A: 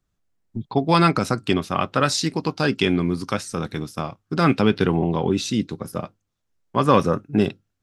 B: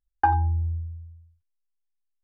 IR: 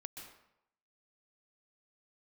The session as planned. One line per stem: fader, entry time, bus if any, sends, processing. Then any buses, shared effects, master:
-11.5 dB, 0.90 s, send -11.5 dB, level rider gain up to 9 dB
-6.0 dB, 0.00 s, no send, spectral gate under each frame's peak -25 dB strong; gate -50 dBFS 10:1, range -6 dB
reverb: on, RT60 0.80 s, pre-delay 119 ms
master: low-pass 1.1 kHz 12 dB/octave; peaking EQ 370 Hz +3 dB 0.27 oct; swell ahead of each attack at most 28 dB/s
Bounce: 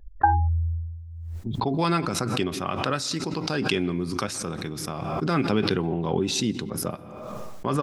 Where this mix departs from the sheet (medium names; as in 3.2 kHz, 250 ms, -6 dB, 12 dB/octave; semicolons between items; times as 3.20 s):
stem B -6.0 dB -> +1.0 dB; master: missing low-pass 1.1 kHz 12 dB/octave